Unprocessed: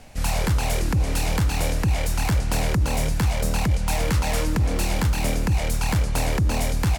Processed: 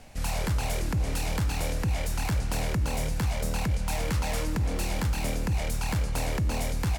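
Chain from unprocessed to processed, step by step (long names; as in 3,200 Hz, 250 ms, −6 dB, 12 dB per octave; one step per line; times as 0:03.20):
in parallel at −1.5 dB: brickwall limiter −21.5 dBFS, peak gain reduction 7.5 dB
on the sum: tuned comb filter 56 Hz, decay 1.6 s, harmonics all, mix 50%
level −3.5 dB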